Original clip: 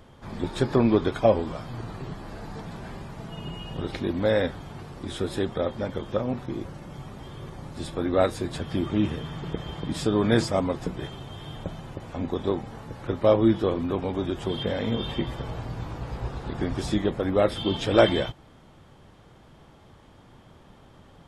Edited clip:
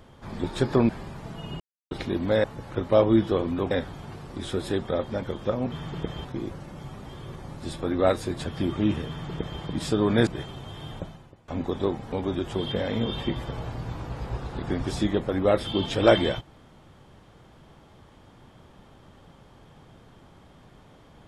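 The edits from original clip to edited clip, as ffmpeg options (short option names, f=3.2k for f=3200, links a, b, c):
-filter_complex "[0:a]asplit=11[a][b][c][d][e][f][g][h][i][j][k];[a]atrim=end=0.892[l];[b]atrim=start=2.828:end=3.54,asetpts=PTS-STARTPTS,afade=t=out:st=0.708:d=0.004:c=hsin[m];[c]atrim=start=3.54:end=3.85,asetpts=PTS-STARTPTS,volume=0[n];[d]atrim=start=3.85:end=4.382,asetpts=PTS-STARTPTS,afade=t=in:d=0.004:c=hsin[o];[e]atrim=start=12.758:end=14.032[p];[f]atrim=start=4.378:end=6.392[q];[g]atrim=start=9.218:end=9.752[r];[h]atrim=start=6.388:end=10.412[s];[i]atrim=start=10.908:end=12.12,asetpts=PTS-STARTPTS,afade=t=out:st=0.692:d=0.52:c=qua:silence=0.112202[t];[j]atrim=start=12.12:end=12.762,asetpts=PTS-STARTPTS,afade=t=in:d=0.004:c=hsin:silence=0.112202[u];[k]atrim=start=14.028[v];[m][n][o]concat=n=3:v=0:a=1[w];[l][w]acrossfade=d=0.004:c1=hsin:c2=hsin[x];[x][p]acrossfade=d=0.004:c1=hsin:c2=hsin[y];[y][q]acrossfade=d=0.004:c1=hsin:c2=hsin[z];[z][r]acrossfade=d=0.004:c1=hsin:c2=hsin[aa];[aa][s]acrossfade=d=0.004:c1=hsin:c2=hsin[ab];[t][u]concat=n=2:v=0:a=1[ac];[ab][ac]acrossfade=d=0.004:c1=hsin:c2=hsin[ad];[ad][v]acrossfade=d=0.004:c1=hsin:c2=hsin"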